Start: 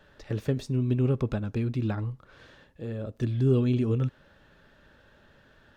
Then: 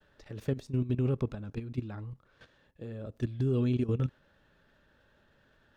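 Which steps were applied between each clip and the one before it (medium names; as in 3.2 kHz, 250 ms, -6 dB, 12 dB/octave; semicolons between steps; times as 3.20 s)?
expander -56 dBFS; level held to a coarse grid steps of 13 dB; trim -1 dB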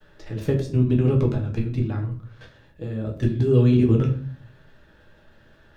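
simulated room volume 40 m³, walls mixed, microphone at 0.58 m; trim +7 dB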